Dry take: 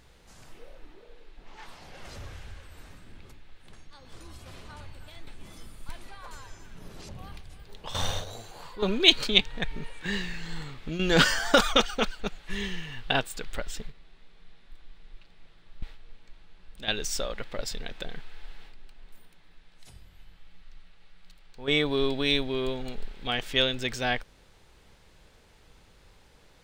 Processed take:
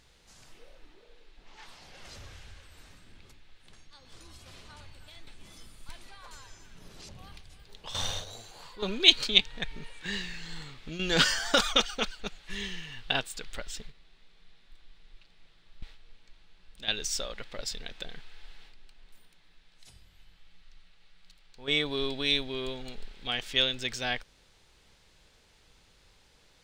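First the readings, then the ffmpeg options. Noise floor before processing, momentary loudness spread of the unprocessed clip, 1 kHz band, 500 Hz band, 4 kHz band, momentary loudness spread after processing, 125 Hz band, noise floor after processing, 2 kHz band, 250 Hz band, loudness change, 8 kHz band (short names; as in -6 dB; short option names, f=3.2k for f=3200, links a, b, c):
-57 dBFS, 24 LU, -5.0 dB, -6.0 dB, 0.0 dB, 21 LU, -6.5 dB, -62 dBFS, -3.0 dB, -6.5 dB, -1.5 dB, 0.0 dB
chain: -af "equalizer=f=5k:w=0.47:g=7.5,volume=-6.5dB"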